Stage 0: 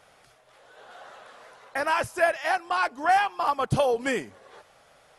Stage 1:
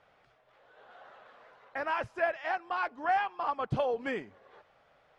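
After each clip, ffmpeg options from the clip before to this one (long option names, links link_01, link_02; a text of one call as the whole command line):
ffmpeg -i in.wav -af "lowpass=3000,volume=-7dB" out.wav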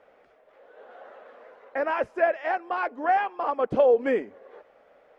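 ffmpeg -i in.wav -af "equalizer=frequency=125:width_type=o:width=1:gain=-10,equalizer=frequency=250:width_type=o:width=1:gain=8,equalizer=frequency=500:width_type=o:width=1:gain=12,equalizer=frequency=2000:width_type=o:width=1:gain=4,equalizer=frequency=4000:width_type=o:width=1:gain=-4" out.wav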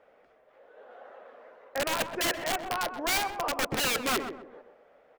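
ffmpeg -i in.wav -filter_complex "[0:a]aeval=exprs='(mod(9.44*val(0)+1,2)-1)/9.44':channel_layout=same,asplit=2[link_01][link_02];[link_02]adelay=128,lowpass=frequency=1300:poles=1,volume=-7dB,asplit=2[link_03][link_04];[link_04]adelay=128,lowpass=frequency=1300:poles=1,volume=0.37,asplit=2[link_05][link_06];[link_06]adelay=128,lowpass=frequency=1300:poles=1,volume=0.37,asplit=2[link_07][link_08];[link_08]adelay=128,lowpass=frequency=1300:poles=1,volume=0.37[link_09];[link_01][link_03][link_05][link_07][link_09]amix=inputs=5:normalize=0,volume=-3dB" out.wav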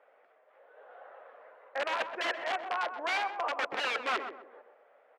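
ffmpeg -i in.wav -af "highpass=580,lowpass=2600" out.wav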